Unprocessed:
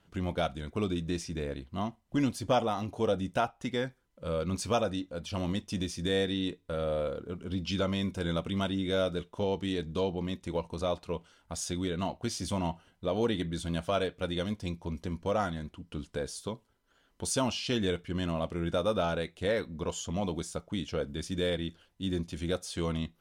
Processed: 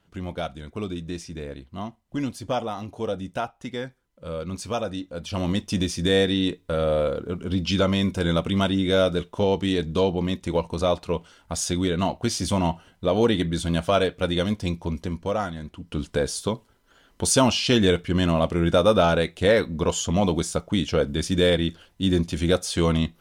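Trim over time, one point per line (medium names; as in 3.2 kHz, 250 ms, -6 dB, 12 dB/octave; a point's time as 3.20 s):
4.73 s +0.5 dB
5.66 s +9 dB
14.82 s +9 dB
15.54 s +2 dB
16.04 s +11 dB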